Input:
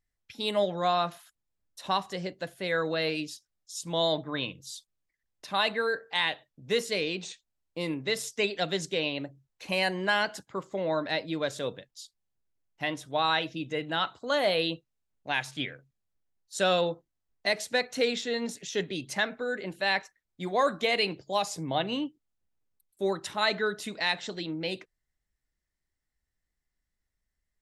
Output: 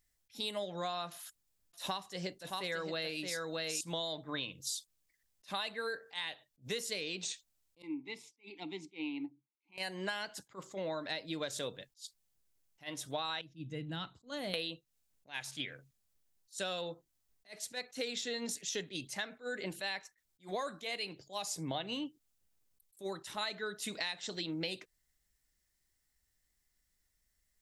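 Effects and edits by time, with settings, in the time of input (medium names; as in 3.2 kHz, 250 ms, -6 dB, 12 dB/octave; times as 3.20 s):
1.11–3.81 s: delay 621 ms -6.5 dB
7.82–9.78 s: vowel filter u
13.41–14.54 s: FFT filter 150 Hz 0 dB, 220 Hz -4 dB, 640 Hz -18 dB
whole clip: treble shelf 3.6 kHz +11.5 dB; compression 12:1, threshold -36 dBFS; attacks held to a fixed rise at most 300 dB/s; trim +1.5 dB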